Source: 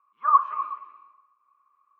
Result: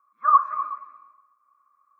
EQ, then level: fixed phaser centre 590 Hz, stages 8; +4.0 dB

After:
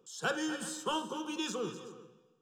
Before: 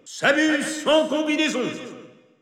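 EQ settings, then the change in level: fixed phaser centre 410 Hz, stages 8; -8.0 dB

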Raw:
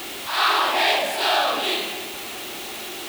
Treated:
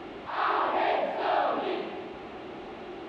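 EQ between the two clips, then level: tape spacing loss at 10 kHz 35 dB; high shelf 2100 Hz -10.5 dB; 0.0 dB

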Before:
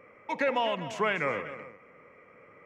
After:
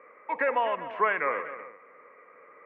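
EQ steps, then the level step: speaker cabinet 370–2300 Hz, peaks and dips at 460 Hz +3 dB, 1100 Hz +7 dB, 1700 Hz +5 dB; 0.0 dB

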